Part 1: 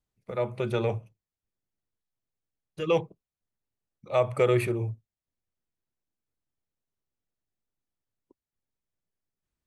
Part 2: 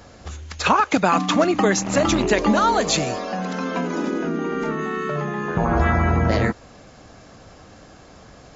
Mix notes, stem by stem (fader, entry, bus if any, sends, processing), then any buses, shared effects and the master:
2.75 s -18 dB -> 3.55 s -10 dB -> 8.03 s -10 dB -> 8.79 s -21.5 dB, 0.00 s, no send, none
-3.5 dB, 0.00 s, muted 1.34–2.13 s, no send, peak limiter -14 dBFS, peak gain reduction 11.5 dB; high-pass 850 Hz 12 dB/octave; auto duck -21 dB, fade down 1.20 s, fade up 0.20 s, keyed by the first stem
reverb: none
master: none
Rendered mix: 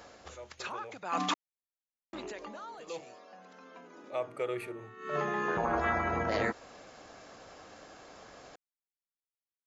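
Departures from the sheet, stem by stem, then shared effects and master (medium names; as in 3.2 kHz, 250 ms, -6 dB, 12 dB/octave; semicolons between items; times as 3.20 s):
stem 2: missing high-pass 850 Hz 12 dB/octave; master: extra tone controls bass -14 dB, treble -2 dB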